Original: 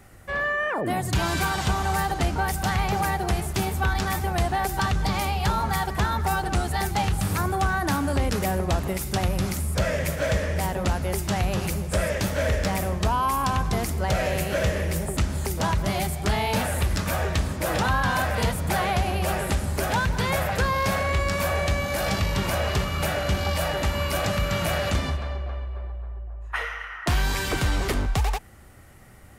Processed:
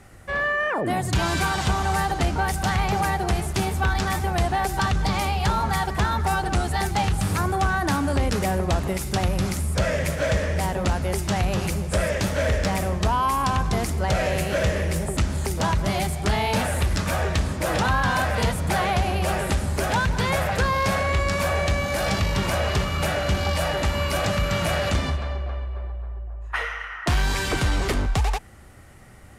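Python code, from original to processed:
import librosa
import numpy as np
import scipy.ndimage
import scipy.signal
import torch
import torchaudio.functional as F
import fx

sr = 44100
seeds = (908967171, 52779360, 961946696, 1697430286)

p1 = scipy.signal.sosfilt(scipy.signal.butter(2, 11000.0, 'lowpass', fs=sr, output='sos'), x)
p2 = fx.clip_asym(p1, sr, top_db=-25.0, bottom_db=-20.5)
y = p1 + F.gain(torch.from_numpy(p2), -11.5).numpy()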